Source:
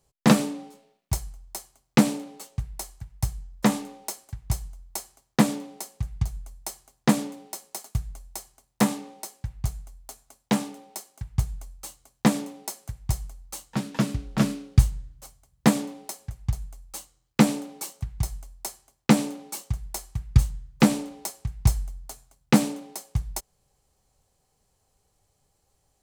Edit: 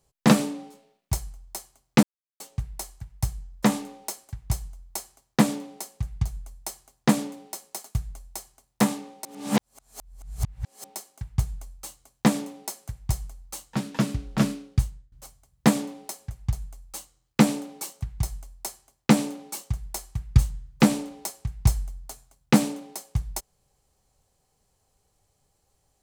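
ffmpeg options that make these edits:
ffmpeg -i in.wav -filter_complex "[0:a]asplit=6[link_01][link_02][link_03][link_04][link_05][link_06];[link_01]atrim=end=2.03,asetpts=PTS-STARTPTS,afade=type=out:start_time=2.026:duration=0.004:curve=hsin[link_07];[link_02]atrim=start=2.03:end=2.4,asetpts=PTS-STARTPTS,volume=0[link_08];[link_03]atrim=start=2.4:end=9.252,asetpts=PTS-STARTPTS,afade=type=in:duration=0.004:curve=hsin[link_09];[link_04]atrim=start=9.248:end=10.842,asetpts=PTS-STARTPTS,areverse[link_10];[link_05]atrim=start=10.838:end=15.12,asetpts=PTS-STARTPTS,afade=type=out:start_time=3.602:duration=0.68:silence=0.0668344[link_11];[link_06]atrim=start=15.12,asetpts=PTS-STARTPTS,afade=type=in:duration=0.004:curve=hsin:silence=0.0668344[link_12];[link_07][link_08][link_09]concat=n=3:v=0:a=1[link_13];[link_13][link_10]acrossfade=duration=0.004:curve1=hsin:curve2=hsin[link_14];[link_11][link_12]concat=n=2:v=0:a=1[link_15];[link_14][link_15]acrossfade=duration=0.004:curve1=hsin:curve2=hsin" out.wav

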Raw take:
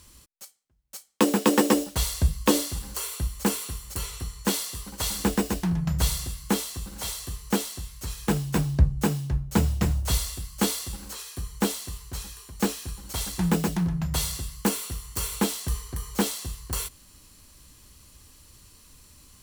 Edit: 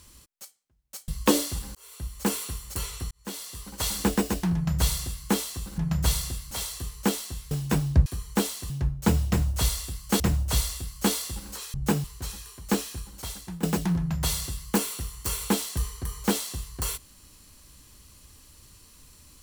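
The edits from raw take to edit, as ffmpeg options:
ffmpeg -i in.wav -filter_complex "[0:a]asplit=13[link_01][link_02][link_03][link_04][link_05][link_06][link_07][link_08][link_09][link_10][link_11][link_12][link_13];[link_01]atrim=end=1.082[link_14];[link_02]atrim=start=2.278:end=2.95,asetpts=PTS-STARTPTS,afade=type=out:start_time=0.668:duration=0.004:curve=hsin[link_15];[link_03]atrim=start=2.95:end=4.31,asetpts=PTS-STARTPTS,afade=type=in:duration=0.63,afade=type=out:start_time=1.356:duration=0.004:curve=hsin[link_16];[link_04]atrim=start=4.31:end=6.982,asetpts=PTS-STARTPTS,afade=type=in:duration=0.71[link_17];[link_05]atrim=start=5.738:end=6.472[link_18];[link_06]atrim=start=6.978:end=7.982[link_19];[link_07]atrim=start=8.338:end=8.892[link_20];[link_08]atrim=start=11.308:end=11.952[link_21];[link_09]atrim=start=9.188:end=10.692[link_22];[link_10]atrim=start=9.768:end=11.312[link_23];[link_11]atrim=start=8.888:end=9.192[link_24];[link_12]atrim=start=11.948:end=13.54,asetpts=PTS-STARTPTS,afade=type=out:start_time=0.822:duration=0.77:silence=0.11885[link_25];[link_13]atrim=start=13.54,asetpts=PTS-STARTPTS,afade=type=in:duration=0.004:curve=hsin:silence=0.11885[link_26];[link_15][link_16][link_17]concat=n=3:v=0:a=1[link_27];[link_14][link_27]acrossfade=duration=0.004:curve1=hsin:curve2=hsin[link_28];[link_28][link_18]acrossfade=duration=0.004:curve1=hsin:curve2=hsin[link_29];[link_29][link_19]acrossfade=duration=0.004:curve1=hsin:curve2=hsin[link_30];[link_30][link_20]acrossfade=duration=0.004:curve1=hsin:curve2=hsin[link_31];[link_31][link_21]acrossfade=duration=0.004:curve1=hsin:curve2=hsin[link_32];[link_32][link_22]acrossfade=duration=0.004:curve1=hsin:curve2=hsin[link_33];[link_33][link_23]acrossfade=duration=0.004:curve1=hsin:curve2=hsin[link_34];[link_34][link_24]acrossfade=duration=0.004:curve1=hsin:curve2=hsin[link_35];[link_25][link_26]concat=n=2:v=0:a=1[link_36];[link_35][link_36]acrossfade=duration=0.004:curve1=hsin:curve2=hsin" out.wav

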